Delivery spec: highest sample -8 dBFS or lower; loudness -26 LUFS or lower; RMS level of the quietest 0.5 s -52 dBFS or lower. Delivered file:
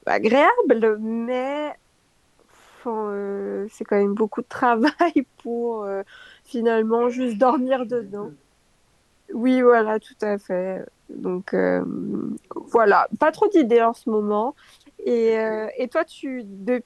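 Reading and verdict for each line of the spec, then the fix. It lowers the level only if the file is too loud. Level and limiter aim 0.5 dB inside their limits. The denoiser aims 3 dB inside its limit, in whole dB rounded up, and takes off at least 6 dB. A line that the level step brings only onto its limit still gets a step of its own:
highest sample -4.5 dBFS: fail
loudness -21.5 LUFS: fail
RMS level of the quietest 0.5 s -62 dBFS: OK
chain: gain -5 dB

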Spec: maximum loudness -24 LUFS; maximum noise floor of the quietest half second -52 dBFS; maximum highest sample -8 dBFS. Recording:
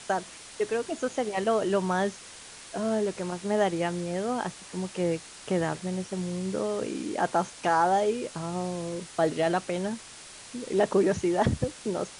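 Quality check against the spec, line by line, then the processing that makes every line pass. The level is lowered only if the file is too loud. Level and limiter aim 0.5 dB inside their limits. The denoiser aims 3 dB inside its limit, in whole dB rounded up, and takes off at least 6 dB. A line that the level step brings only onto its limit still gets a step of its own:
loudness -28.5 LUFS: OK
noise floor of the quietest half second -46 dBFS: fail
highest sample -11.5 dBFS: OK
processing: denoiser 9 dB, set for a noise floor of -46 dBFS

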